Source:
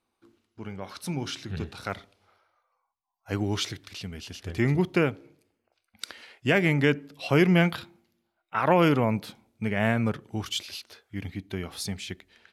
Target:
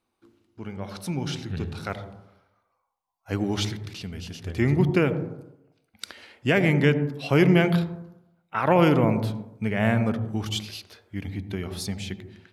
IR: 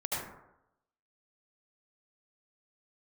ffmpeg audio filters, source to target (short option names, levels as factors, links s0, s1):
-filter_complex "[0:a]asplit=2[s0][s1];[s1]equalizer=f=1700:t=o:w=2.3:g=-13.5[s2];[1:a]atrim=start_sample=2205,lowpass=2300[s3];[s2][s3]afir=irnorm=-1:irlink=0,volume=0.447[s4];[s0][s4]amix=inputs=2:normalize=0"